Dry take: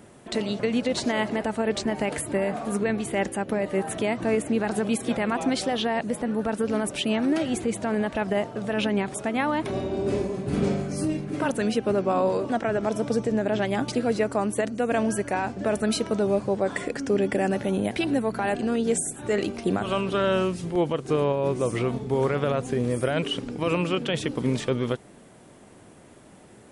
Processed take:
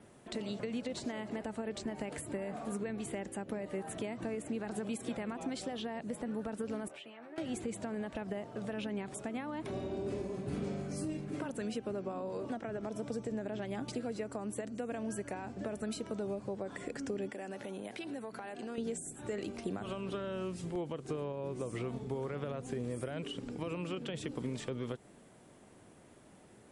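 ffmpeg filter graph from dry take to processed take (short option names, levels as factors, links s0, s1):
-filter_complex "[0:a]asettb=1/sr,asplit=3[s0][s1][s2];[s0]atrim=end=6.884[s3];[s1]atrim=start=6.88:end=7.38,asetpts=PTS-STARTPTS,afade=t=in:d=0.004:c=qsin,afade=t=out:st=0.496:d=0.004:c=qsin,acrossover=split=470 2900:gain=0.141 1 0.158[s4][s5][s6];[s4][s5][s6]amix=inputs=3:normalize=0,acompressor=threshold=0.0112:ratio=8:attack=3.2:release=140:knee=1:detection=peak,asplit=2[s7][s8];[s8]adelay=13,volume=0.631[s9];[s7][s9]amix=inputs=2:normalize=0,atrim=end_sample=22050[s10];[s2]atrim=start=7.376[s11];[s3][s10]acrossfade=d=0.004:c1=hsin:c2=qsin[s12];[s12][s11]acrossfade=d=0.004:c1=qsin:c2=hsin,asettb=1/sr,asplit=3[s13][s14][s15];[s13]atrim=end=17.294[s16];[s14]atrim=start=17.29:end=18.78,asetpts=PTS-STARTPTS,afade=t=in:d=0.004:c=qsin,afade=t=out:st=1.486:d=0.004:c=qsin,highpass=f=360:p=1,acompressor=threshold=0.0355:ratio=6:attack=3.2:release=140:knee=1:detection=peak[s17];[s15]atrim=start=18.776[s18];[s16][s17]acrossfade=d=0.004:c1=hsin:c2=qsin[s19];[s19][s18]acrossfade=d=0.004:c1=qsin:c2=hsin,acompressor=threshold=0.0562:ratio=6,adynamicequalizer=threshold=0.00112:dfrequency=7600:dqfactor=7.4:tfrequency=7600:tqfactor=7.4:attack=5:release=100:ratio=0.375:range=3:mode=boostabove:tftype=bell,acrossover=split=470[s20][s21];[s21]acompressor=threshold=0.0224:ratio=6[s22];[s20][s22]amix=inputs=2:normalize=0,volume=0.376"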